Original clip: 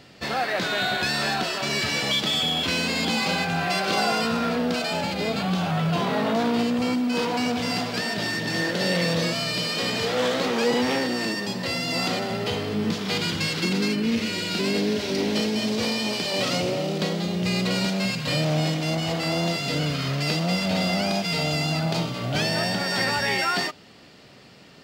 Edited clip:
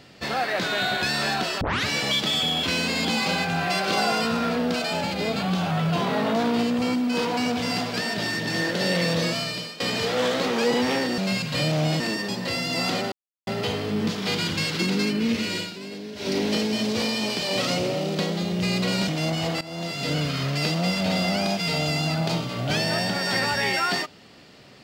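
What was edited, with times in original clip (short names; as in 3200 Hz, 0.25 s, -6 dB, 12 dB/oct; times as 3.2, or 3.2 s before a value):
1.61 tape start 0.25 s
9.36–9.8 fade out, to -18 dB
12.3 insert silence 0.35 s
14.42–15.11 dip -12.5 dB, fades 0.13 s
17.91–18.73 move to 11.18
19.26–19.77 fade in, from -18.5 dB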